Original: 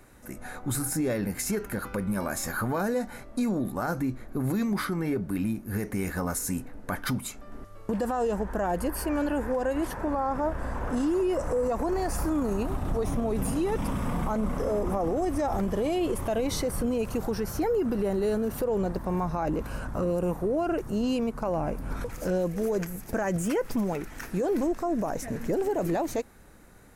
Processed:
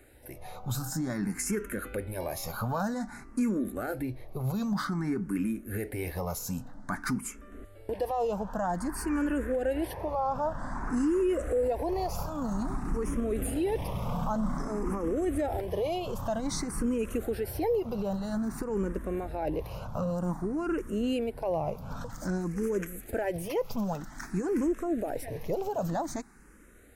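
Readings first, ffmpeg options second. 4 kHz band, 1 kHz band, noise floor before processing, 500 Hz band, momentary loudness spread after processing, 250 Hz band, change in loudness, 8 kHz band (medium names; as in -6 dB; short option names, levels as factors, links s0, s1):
-3.0 dB, -2.5 dB, -46 dBFS, -3.0 dB, 7 LU, -2.5 dB, -3.0 dB, -4.0 dB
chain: -filter_complex "[0:a]asplit=2[s0][s1];[s1]afreqshift=0.52[s2];[s0][s2]amix=inputs=2:normalize=1"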